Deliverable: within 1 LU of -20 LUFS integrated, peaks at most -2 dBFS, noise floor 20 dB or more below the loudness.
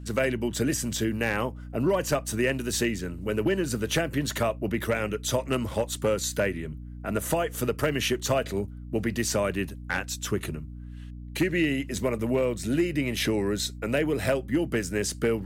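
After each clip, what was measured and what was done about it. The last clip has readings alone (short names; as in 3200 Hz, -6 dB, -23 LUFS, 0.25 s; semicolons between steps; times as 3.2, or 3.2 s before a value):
clipped 0.3%; flat tops at -16.5 dBFS; hum 60 Hz; harmonics up to 300 Hz; hum level -38 dBFS; loudness -27.5 LUFS; peak -16.5 dBFS; loudness target -20.0 LUFS
-> clip repair -16.5 dBFS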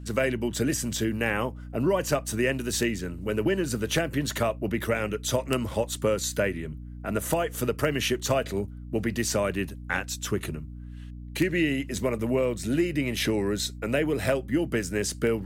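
clipped 0.0%; hum 60 Hz; harmonics up to 300 Hz; hum level -38 dBFS
-> notches 60/120/180/240/300 Hz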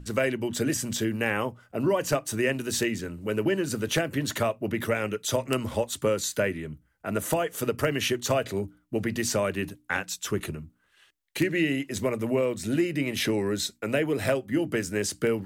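hum none; loudness -28.0 LUFS; peak -8.0 dBFS; loudness target -20.0 LUFS
-> gain +8 dB; limiter -2 dBFS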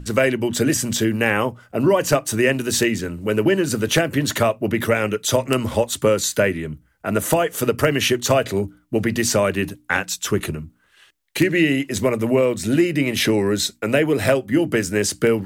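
loudness -20.0 LUFS; peak -2.0 dBFS; noise floor -60 dBFS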